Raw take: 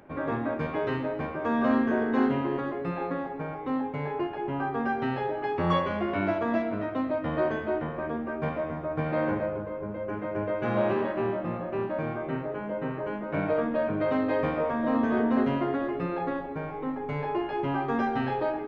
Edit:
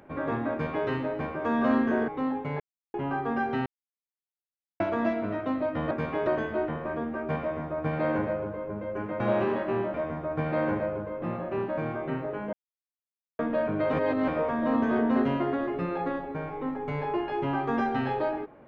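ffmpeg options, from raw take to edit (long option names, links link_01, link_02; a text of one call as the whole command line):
ffmpeg -i in.wav -filter_complex "[0:a]asplit=15[link_01][link_02][link_03][link_04][link_05][link_06][link_07][link_08][link_09][link_10][link_11][link_12][link_13][link_14][link_15];[link_01]atrim=end=2.082[link_16];[link_02]atrim=start=3.568:end=4.09,asetpts=PTS-STARTPTS,afade=type=out:start_time=0.518:duration=0.004:curve=hsin[link_17];[link_03]atrim=start=4.09:end=4.43,asetpts=PTS-STARTPTS,volume=0[link_18];[link_04]atrim=start=4.43:end=5.15,asetpts=PTS-STARTPTS,afade=type=in:duration=0.004:curve=hsin,afade=type=out:start_time=0.716:duration=0.004:curve=hsin[link_19];[link_05]atrim=start=5.15:end=6.29,asetpts=PTS-STARTPTS,volume=0[link_20];[link_06]atrim=start=6.29:end=7.402,asetpts=PTS-STARTPTS,afade=type=in:duration=0.004:curve=hsin[link_21];[link_07]atrim=start=0.518:end=0.882[link_22];[link_08]atrim=start=7.398:end=10.332[link_23];[link_09]atrim=start=10.688:end=11.432[link_24];[link_10]atrim=start=8.538:end=9.822[link_25];[link_11]atrim=start=11.428:end=12.74,asetpts=PTS-STARTPTS,afade=type=out:start_time=1.308:duration=0.004:curve=hsin[link_26];[link_12]atrim=start=12.74:end=13.6,asetpts=PTS-STARTPTS,volume=0[link_27];[link_13]atrim=start=13.6:end=14.142,asetpts=PTS-STARTPTS,afade=type=in:duration=0.004:curve=hsin[link_28];[link_14]atrim=start=14.138:end=14.492,asetpts=PTS-STARTPTS,areverse[link_29];[link_15]atrim=start=14.488[link_30];[link_17][link_18][link_19][link_20][link_21]concat=n=5:v=0:a=1[link_31];[link_16][link_31]acrossfade=duration=0.004:curve1=hsin:curve2=hsin[link_32];[link_32][link_22]acrossfade=duration=0.004:curve1=hsin:curve2=hsin[link_33];[link_33][link_23]acrossfade=duration=0.004:curve1=hsin:curve2=hsin[link_34];[link_34][link_24]acrossfade=duration=0.004:curve1=hsin:curve2=hsin[link_35];[link_35][link_25]acrossfade=duration=0.004:curve1=hsin:curve2=hsin[link_36];[link_26][link_27][link_28]concat=n=3:v=0:a=1[link_37];[link_36][link_37]acrossfade=duration=0.004:curve1=hsin:curve2=hsin[link_38];[link_38][link_29]acrossfade=duration=0.004:curve1=hsin:curve2=hsin[link_39];[link_39][link_30]acrossfade=duration=0.004:curve1=hsin:curve2=hsin" out.wav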